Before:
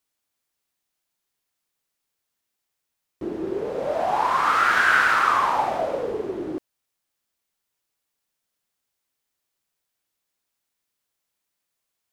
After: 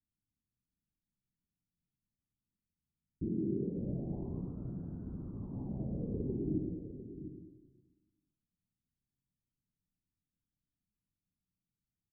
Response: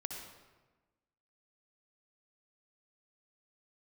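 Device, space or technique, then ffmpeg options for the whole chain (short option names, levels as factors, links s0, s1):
club heard from the street: -filter_complex "[0:a]alimiter=limit=0.251:level=0:latency=1:release=189,lowpass=f=220:w=0.5412,lowpass=f=220:w=1.3066[s0];[1:a]atrim=start_sample=2205[s1];[s0][s1]afir=irnorm=-1:irlink=0,asettb=1/sr,asplit=3[s2][s3][s4];[s2]atrim=end=3.284[s5];[s3]atrim=start=3.28:end=3.77,asetpts=PTS-STARTPTS,afade=t=in:d=0.004:c=qsin,afade=t=out:st=0.486:d=0.004:c=qsin,highpass=130[s6];[s4]atrim=start=3.766[s7];[s5][s6]acrossfade=d=0.004:c1=hsin:c2=qsin[s8];[s8][s7]acrossfade=d=0.004:c1=qsin:c2=hsin,asplit=2[s9][s10];[s10]adelay=699.7,volume=0.282,highshelf=f=4000:g=-15.7[s11];[s9][s11]amix=inputs=2:normalize=0,volume=2.37"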